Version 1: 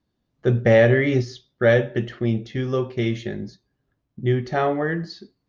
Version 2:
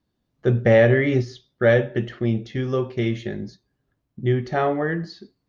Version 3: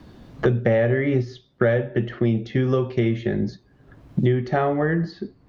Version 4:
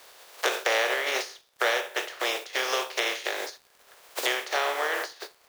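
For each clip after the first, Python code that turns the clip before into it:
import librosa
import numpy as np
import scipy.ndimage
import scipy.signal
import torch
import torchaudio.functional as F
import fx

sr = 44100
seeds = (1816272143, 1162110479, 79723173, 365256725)

y1 = fx.dynamic_eq(x, sr, hz=5500.0, q=0.96, threshold_db=-44.0, ratio=4.0, max_db=-4)
y2 = fx.lowpass(y1, sr, hz=2500.0, slope=6)
y2 = fx.band_squash(y2, sr, depth_pct=100)
y3 = fx.spec_flatten(y2, sr, power=0.38)
y3 = scipy.signal.sosfilt(scipy.signal.butter(6, 430.0, 'highpass', fs=sr, output='sos'), y3)
y3 = fx.dmg_crackle(y3, sr, seeds[0], per_s=76.0, level_db=-38.0)
y3 = y3 * librosa.db_to_amplitude(-4.5)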